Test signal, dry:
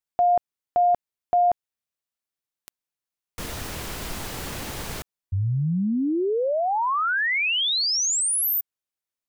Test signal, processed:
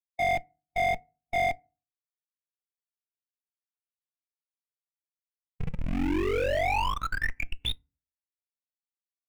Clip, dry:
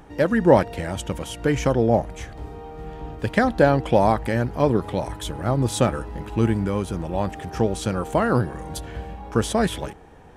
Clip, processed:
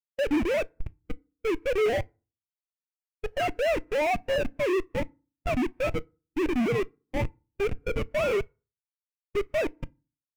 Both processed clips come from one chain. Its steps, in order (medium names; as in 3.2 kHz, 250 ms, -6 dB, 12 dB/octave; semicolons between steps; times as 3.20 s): formants replaced by sine waves; Schmitt trigger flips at -23.5 dBFS; peaking EQ 2.4 kHz +9.5 dB 0.83 oct; FDN reverb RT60 0.52 s, low-frequency decay 1.25×, high-frequency decay 0.55×, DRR 17.5 dB; saturation -18 dBFS; spectral contrast expander 1.5:1